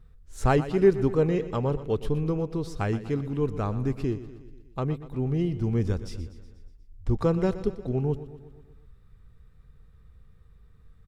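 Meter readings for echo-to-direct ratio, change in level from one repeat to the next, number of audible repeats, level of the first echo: −12.5 dB, −4.5 dB, 5, −14.5 dB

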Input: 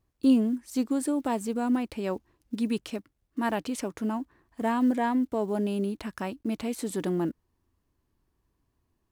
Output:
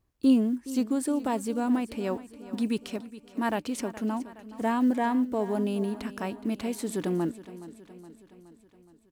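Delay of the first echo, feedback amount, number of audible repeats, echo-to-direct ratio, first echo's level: 419 ms, 58%, 5, −14.0 dB, −16.0 dB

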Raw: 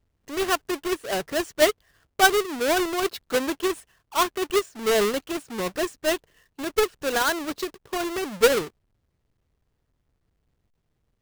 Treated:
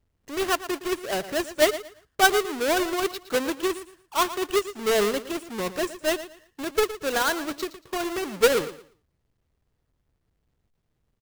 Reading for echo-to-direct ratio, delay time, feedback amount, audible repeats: −13.5 dB, 115 ms, 25%, 2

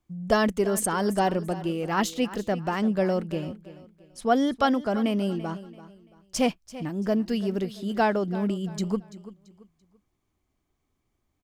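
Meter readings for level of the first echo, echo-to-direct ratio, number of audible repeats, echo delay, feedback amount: −16.0 dB, −15.5 dB, 2, 337 ms, 32%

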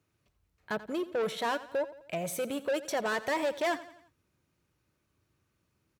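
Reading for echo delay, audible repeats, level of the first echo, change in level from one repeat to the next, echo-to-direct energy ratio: 86 ms, 3, −16.0 dB, −6.5 dB, −15.0 dB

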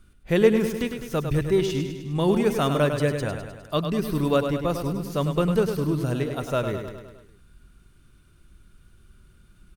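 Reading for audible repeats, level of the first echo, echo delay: 6, −7.5 dB, 102 ms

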